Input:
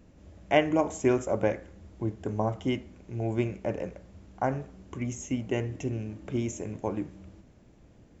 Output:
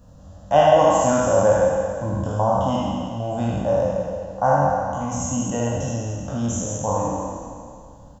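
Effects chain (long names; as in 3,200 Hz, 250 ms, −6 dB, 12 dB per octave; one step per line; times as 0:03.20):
peak hold with a decay on every bin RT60 2.30 s
parametric band 520 Hz +6.5 dB 0.32 octaves
phaser with its sweep stopped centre 920 Hz, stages 4
ambience of single reflections 21 ms −6 dB, 77 ms −4.5 dB
level +6.5 dB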